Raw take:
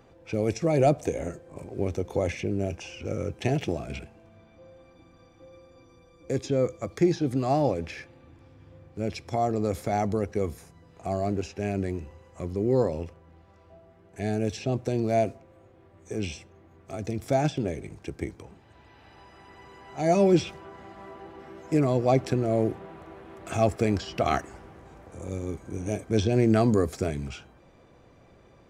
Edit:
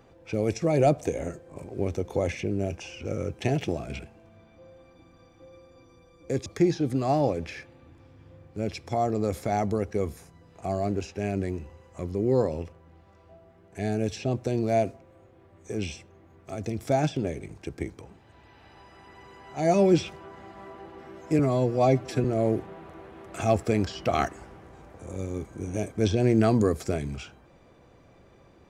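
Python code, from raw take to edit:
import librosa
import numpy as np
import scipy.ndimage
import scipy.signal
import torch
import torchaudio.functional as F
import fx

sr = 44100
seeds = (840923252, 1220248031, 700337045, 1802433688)

y = fx.edit(x, sr, fx.cut(start_s=6.46, length_s=0.41),
    fx.stretch_span(start_s=21.8, length_s=0.57, factor=1.5), tone=tone)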